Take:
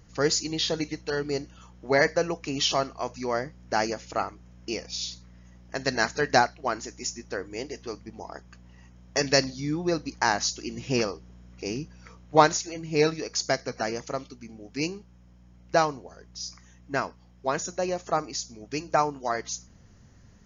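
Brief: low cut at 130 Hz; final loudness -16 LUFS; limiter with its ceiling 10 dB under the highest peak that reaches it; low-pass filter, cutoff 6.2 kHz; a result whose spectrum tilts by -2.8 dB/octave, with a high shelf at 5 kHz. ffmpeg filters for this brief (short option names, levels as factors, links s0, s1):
-af "highpass=130,lowpass=6200,highshelf=f=5000:g=6.5,volume=4.73,alimiter=limit=1:level=0:latency=1"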